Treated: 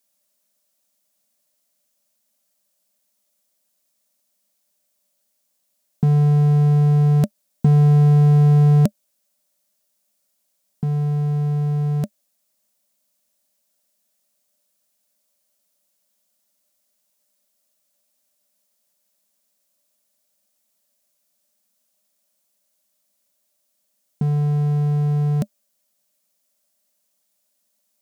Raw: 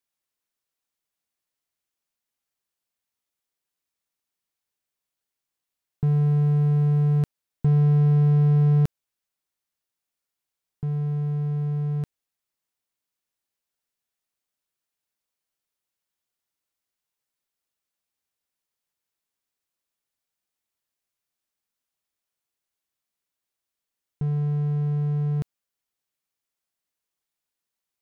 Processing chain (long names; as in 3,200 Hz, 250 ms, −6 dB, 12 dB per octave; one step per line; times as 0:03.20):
bass and treble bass −8 dB, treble +11 dB
hollow resonant body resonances 210/590 Hz, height 18 dB, ringing for 60 ms
level +5.5 dB